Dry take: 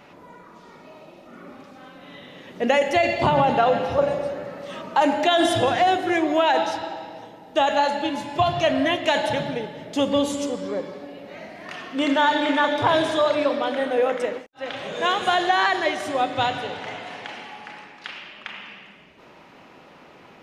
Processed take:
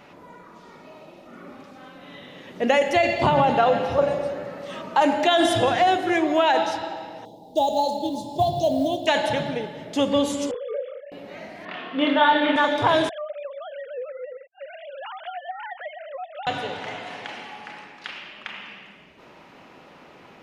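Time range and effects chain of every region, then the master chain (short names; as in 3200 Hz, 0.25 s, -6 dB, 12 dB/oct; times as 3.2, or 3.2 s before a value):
7.25–9.07 elliptic band-stop 820–3700 Hz, stop band 60 dB + short-mantissa float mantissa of 4-bit
10.51–11.12 sine-wave speech + compressor 3:1, threshold -27 dBFS + doubler 32 ms -4.5 dB
11.65–12.56 elliptic band-pass 150–3600 Hz, stop band 50 dB + doubler 27 ms -3 dB
13.09–16.47 sine-wave speech + compressor 3:1, threshold -35 dBFS
whole clip: dry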